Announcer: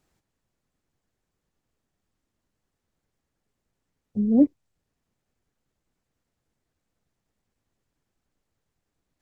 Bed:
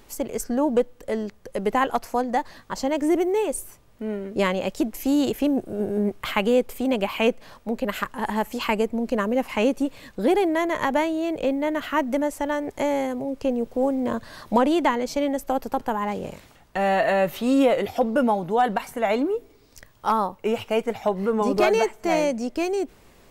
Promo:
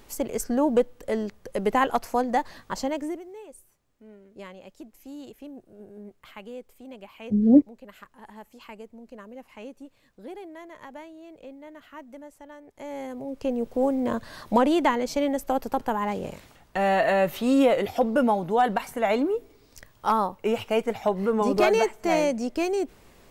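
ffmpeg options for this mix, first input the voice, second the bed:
ffmpeg -i stem1.wav -i stem2.wav -filter_complex "[0:a]adelay=3150,volume=2dB[link_01];[1:a]volume=18.5dB,afade=type=out:start_time=2.71:duration=0.5:silence=0.105925,afade=type=in:start_time=12.74:duration=1.02:silence=0.112202[link_02];[link_01][link_02]amix=inputs=2:normalize=0" out.wav

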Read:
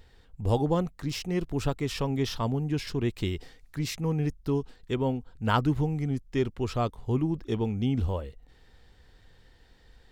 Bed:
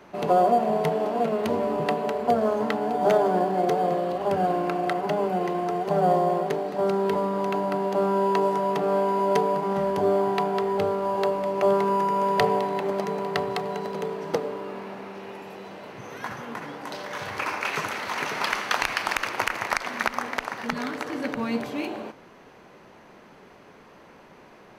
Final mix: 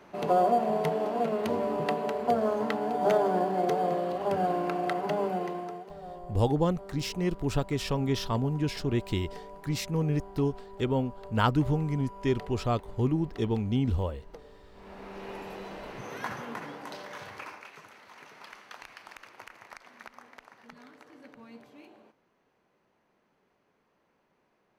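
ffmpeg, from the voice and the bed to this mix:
ffmpeg -i stem1.wav -i stem2.wav -filter_complex "[0:a]adelay=5900,volume=0dB[link_01];[1:a]volume=17.5dB,afade=type=out:start_time=5.25:duration=0.68:silence=0.11885,afade=type=in:start_time=14.73:duration=0.61:silence=0.0841395,afade=type=out:start_time=16.17:duration=1.53:silence=0.0891251[link_02];[link_01][link_02]amix=inputs=2:normalize=0" out.wav

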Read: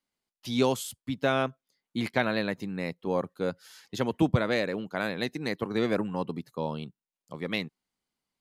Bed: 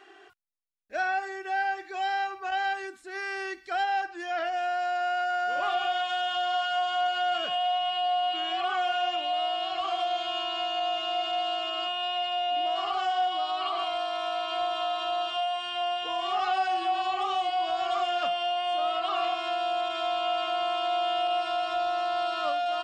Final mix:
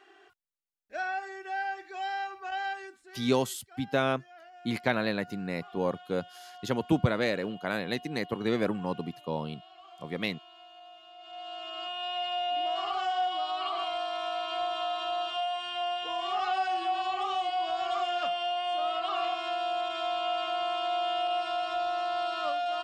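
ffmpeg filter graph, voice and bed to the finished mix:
ffmpeg -i stem1.wav -i stem2.wav -filter_complex "[0:a]adelay=2700,volume=-1dB[link_01];[1:a]volume=14.5dB,afade=type=out:start_time=2.69:duration=0.71:silence=0.141254,afade=type=in:start_time=11.18:duration=1.12:silence=0.105925[link_02];[link_01][link_02]amix=inputs=2:normalize=0" out.wav

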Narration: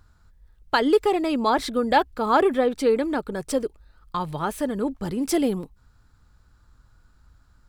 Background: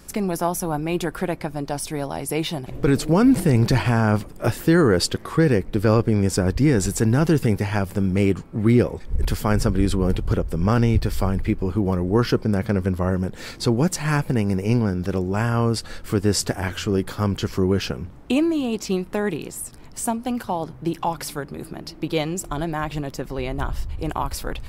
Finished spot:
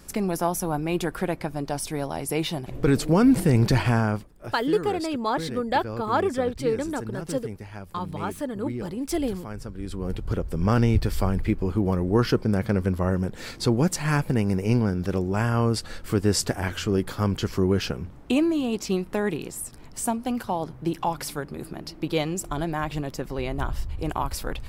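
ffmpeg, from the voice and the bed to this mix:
ffmpeg -i stem1.wav -i stem2.wav -filter_complex "[0:a]adelay=3800,volume=-4.5dB[link_01];[1:a]volume=12.5dB,afade=type=out:start_time=3.95:duration=0.32:silence=0.188365,afade=type=in:start_time=9.77:duration=0.97:silence=0.188365[link_02];[link_01][link_02]amix=inputs=2:normalize=0" out.wav

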